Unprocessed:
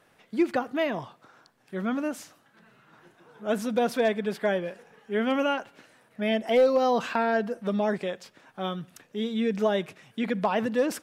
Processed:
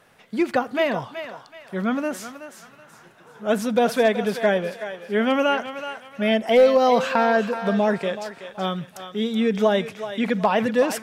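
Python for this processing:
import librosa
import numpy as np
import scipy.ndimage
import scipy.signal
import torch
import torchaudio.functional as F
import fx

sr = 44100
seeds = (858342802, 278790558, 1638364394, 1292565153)

p1 = fx.peak_eq(x, sr, hz=320.0, db=-5.5, octaves=0.39)
p2 = p1 + fx.echo_thinned(p1, sr, ms=376, feedback_pct=36, hz=600.0, wet_db=-9.0, dry=0)
y = F.gain(torch.from_numpy(p2), 6.0).numpy()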